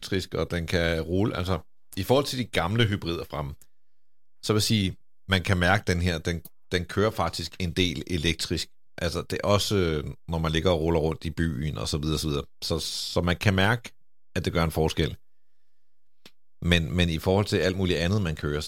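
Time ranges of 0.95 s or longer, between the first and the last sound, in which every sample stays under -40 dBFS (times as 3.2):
15.14–16.26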